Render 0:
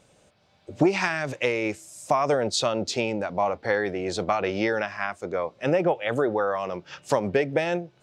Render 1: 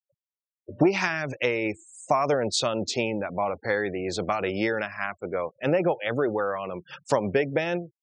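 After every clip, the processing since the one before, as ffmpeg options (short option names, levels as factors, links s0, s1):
-af "afftfilt=real='re*gte(hypot(re,im),0.01)':imag='im*gte(hypot(re,im),0.01)':win_size=1024:overlap=0.75,adynamicequalizer=threshold=0.0141:dfrequency=770:dqfactor=1.2:tfrequency=770:tqfactor=1.2:attack=5:release=100:ratio=0.375:range=2.5:mode=cutabove:tftype=bell"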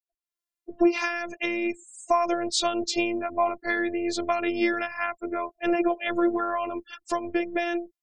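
-af "dynaudnorm=f=190:g=3:m=4.47,afftfilt=real='hypot(re,im)*cos(PI*b)':imag='0':win_size=512:overlap=0.75,volume=0.531"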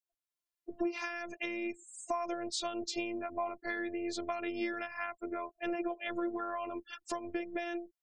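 -af "acompressor=threshold=0.0178:ratio=2,volume=0.668"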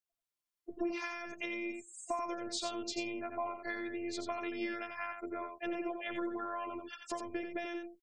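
-af "aecho=1:1:88:0.501,volume=0.794"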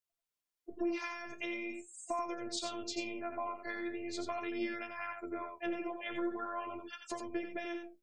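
-af "flanger=delay=8.2:depth=7.4:regen=58:speed=0.42:shape=sinusoidal,volume=1.5"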